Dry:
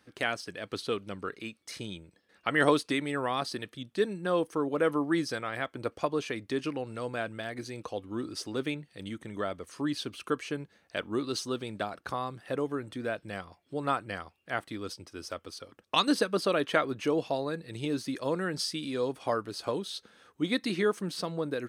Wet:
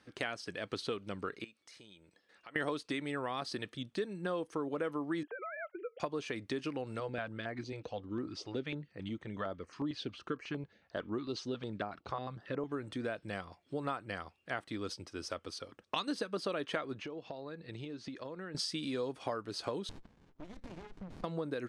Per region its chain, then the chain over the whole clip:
1.44–2.56 s: bass shelf 250 Hz -11.5 dB + compression 2.5:1, threshold -59 dBFS
5.23–6.00 s: formants replaced by sine waves + compression 3:1, threshold -38 dBFS + distance through air 300 m
7.00–12.72 s: distance through air 140 m + step-sequenced notch 11 Hz 240–3500 Hz
16.99–18.55 s: low-pass 4.9 kHz + transient shaper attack +4 dB, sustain -3 dB + compression 8:1, threshold -40 dBFS
19.89–21.24 s: elliptic low-pass 6.2 kHz + compression, threshold -40 dBFS + sliding maximum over 65 samples
whole clip: low-pass 7.9 kHz 12 dB/octave; compression 4:1, threshold -34 dBFS

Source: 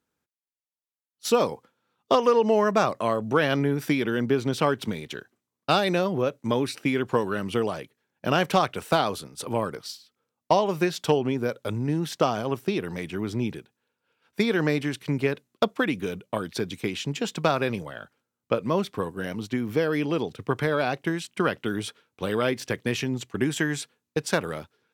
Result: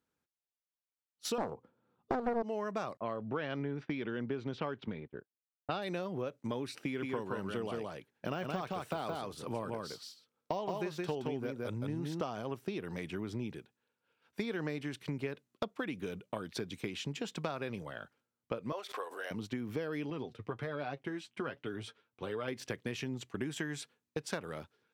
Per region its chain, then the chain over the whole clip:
1.38–2.43 s: tilt shelf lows +9.5 dB, about 1.2 kHz + loudspeaker Doppler distortion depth 0.68 ms
2.97–5.82 s: level-controlled noise filter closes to 400 Hz, open at -19 dBFS + expander -37 dBFS + low-pass 4.1 kHz
6.82–12.21 s: de-esser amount 80% + delay 170 ms -3.5 dB
18.72–19.31 s: high-pass 510 Hz 24 dB/octave + band-stop 960 Hz, Q 25 + swell ahead of each attack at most 94 dB/s
20.10–22.48 s: treble shelf 6.2 kHz -9.5 dB + flange 1.3 Hz, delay 6.6 ms, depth 3 ms, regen +35%
whole clip: treble shelf 7.6 kHz -5 dB; compression 3:1, threshold -31 dBFS; trim -5 dB

